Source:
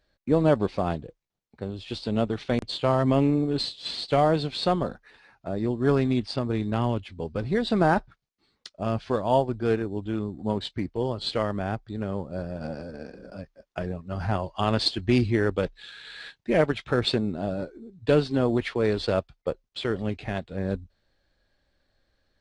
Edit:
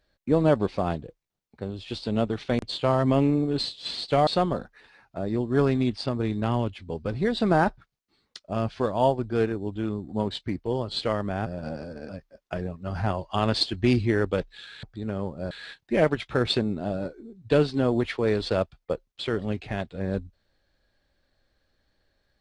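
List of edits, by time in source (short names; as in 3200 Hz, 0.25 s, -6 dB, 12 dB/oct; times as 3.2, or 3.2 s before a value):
4.27–4.57 cut
11.76–12.44 move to 16.08
13.07–13.34 cut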